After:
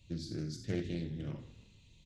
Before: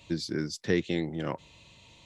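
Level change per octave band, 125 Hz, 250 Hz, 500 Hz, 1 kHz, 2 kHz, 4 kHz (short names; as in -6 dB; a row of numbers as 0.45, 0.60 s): -2.5, -8.0, -11.5, -18.0, -15.0, -11.0 dB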